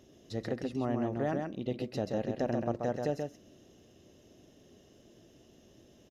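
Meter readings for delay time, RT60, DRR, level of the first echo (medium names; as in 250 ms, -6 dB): 132 ms, no reverb, no reverb, -4.5 dB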